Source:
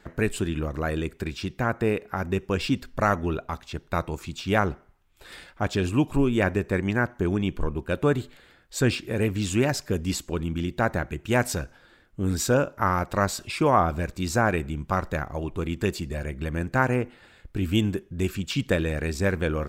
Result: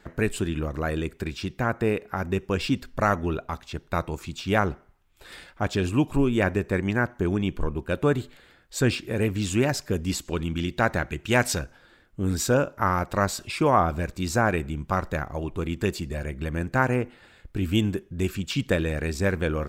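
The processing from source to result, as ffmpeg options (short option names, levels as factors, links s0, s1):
-filter_complex "[0:a]asettb=1/sr,asplit=3[s0][s1][s2];[s0]atrim=end=10.254[s3];[s1]atrim=start=10.25:end=11.59,asetpts=PTS-STARTPTS,afade=t=in:d=0.004:c=qsin,afade=t=out:st=1.336:d=0.004:c=qsin,equalizer=f=3600:w=0.48:g=5.5[s4];[s2]atrim=start=11.586[s5];[s3][s4]acrossfade=d=0.004:c1=hsin:c2=qsin[s6];[s6][s5]acrossfade=d=0.004:c1=qsin:c2=hsin"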